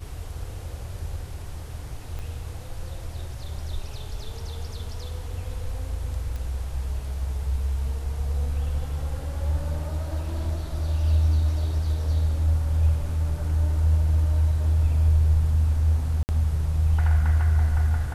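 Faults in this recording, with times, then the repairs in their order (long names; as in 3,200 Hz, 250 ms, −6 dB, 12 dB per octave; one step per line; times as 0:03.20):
0:02.19: click −23 dBFS
0:06.36: click −22 dBFS
0:16.23–0:16.29: drop-out 59 ms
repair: click removal
repair the gap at 0:16.23, 59 ms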